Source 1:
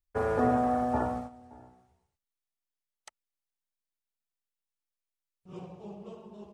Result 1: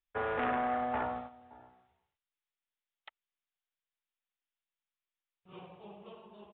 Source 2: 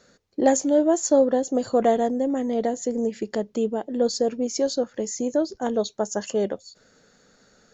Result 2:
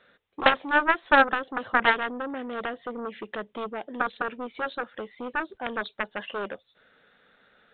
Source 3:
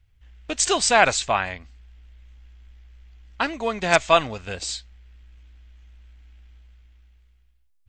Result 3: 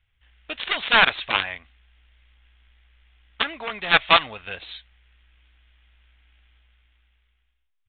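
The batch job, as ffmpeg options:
-af "aeval=exprs='0.891*(cos(1*acos(clip(val(0)/0.891,-1,1)))-cos(1*PI/2))+0.1*(cos(3*acos(clip(val(0)/0.891,-1,1)))-cos(3*PI/2))+0.00708*(cos(4*acos(clip(val(0)/0.891,-1,1)))-cos(4*PI/2))+0.00562*(cos(5*acos(clip(val(0)/0.891,-1,1)))-cos(5*PI/2))+0.126*(cos(7*acos(clip(val(0)/0.891,-1,1)))-cos(7*PI/2))':c=same,apsyclip=1.78,tiltshelf=f=650:g=-7.5,aresample=8000,asoftclip=type=hard:threshold=0.316,aresample=44100,volume=1.33"

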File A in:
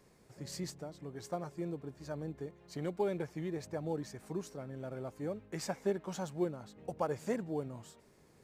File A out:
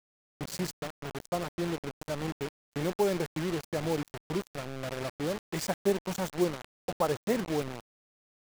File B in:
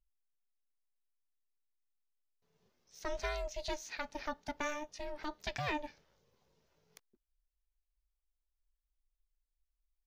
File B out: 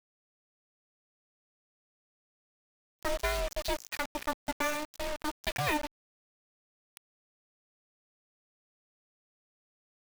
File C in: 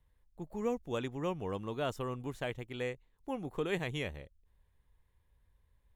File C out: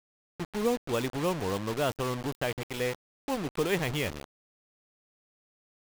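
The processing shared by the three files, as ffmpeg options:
-af "acrusher=bits=6:mix=0:aa=0.000001,volume=2" -ar 44100 -c:a adpcm_ima_wav

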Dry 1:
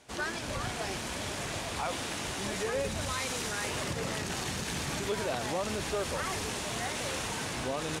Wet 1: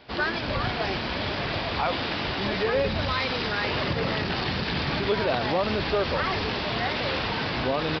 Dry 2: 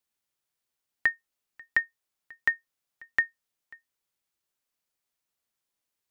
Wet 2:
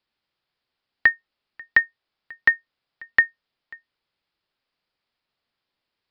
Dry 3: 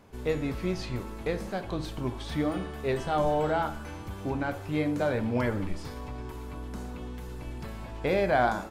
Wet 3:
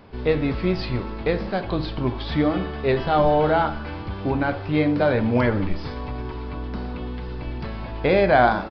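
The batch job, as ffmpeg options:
-af "aresample=11025,aresample=44100,volume=2.51"

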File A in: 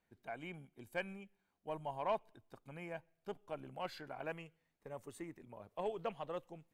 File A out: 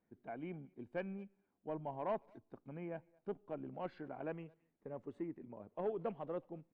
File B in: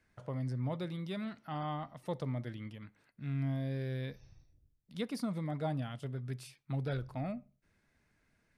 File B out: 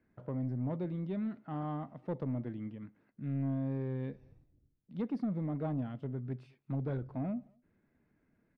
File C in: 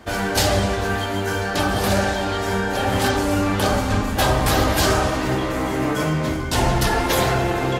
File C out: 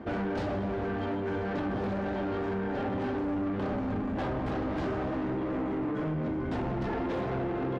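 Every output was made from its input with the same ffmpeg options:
-filter_complex "[0:a]lowpass=2200,equalizer=f=270:t=o:w=2.2:g=12,acompressor=threshold=0.112:ratio=6,asoftclip=type=tanh:threshold=0.0794,asplit=2[s0][s1];[s1]adelay=220,highpass=300,lowpass=3400,asoftclip=type=hard:threshold=0.0299,volume=0.0447[s2];[s0][s2]amix=inputs=2:normalize=0,volume=0.531"

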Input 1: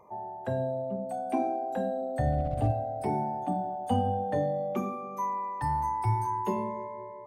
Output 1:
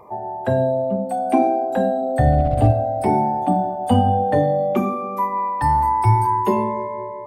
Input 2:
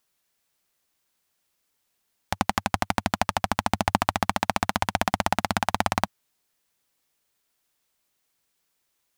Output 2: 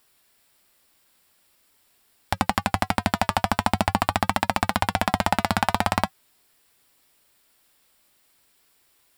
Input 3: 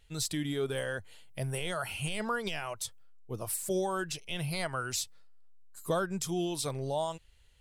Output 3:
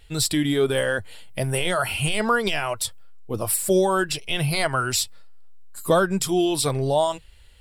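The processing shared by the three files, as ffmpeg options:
-af "bandreject=f=6300:w=5.3,flanger=delay=2.6:depth=1.2:regen=-71:speed=0.45:shape=triangular,alimiter=level_in=7.08:limit=0.891:release=50:level=0:latency=1,volume=0.891"

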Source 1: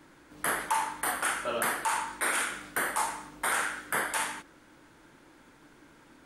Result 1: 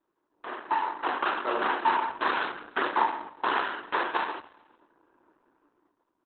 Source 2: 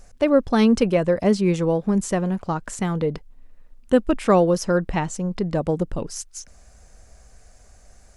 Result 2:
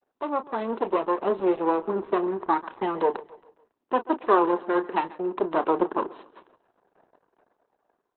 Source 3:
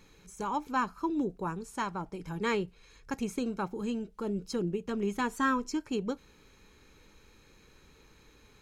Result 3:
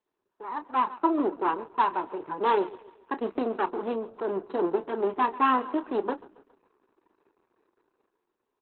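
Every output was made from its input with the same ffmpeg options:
-filter_complex "[0:a]agate=range=0.316:threshold=0.00562:ratio=16:detection=peak,highshelf=f=3300:g=-4.5,dynaudnorm=f=120:g=13:m=5.96,aeval=exprs='max(val(0),0)':c=same,adynamicsmooth=sensitivity=3:basefreq=2000,highpass=f=290:w=0.5412,highpass=f=290:w=1.3066,equalizer=f=370:t=q:w=4:g=6,equalizer=f=550:t=q:w=4:g=-5,equalizer=f=990:t=q:w=4:g=8,equalizer=f=2200:t=q:w=4:g=-8,equalizer=f=3500:t=q:w=4:g=-4,equalizer=f=5100:t=q:w=4:g=-4,lowpass=f=7400:w=0.5412,lowpass=f=7400:w=1.3066,asplit=2[s0][s1];[s1]adelay=31,volume=0.266[s2];[s0][s2]amix=inputs=2:normalize=0,aecho=1:1:138|276|414|552:0.119|0.0559|0.0263|0.0123,volume=0.631" -ar 48000 -c:a libopus -b:a 8k

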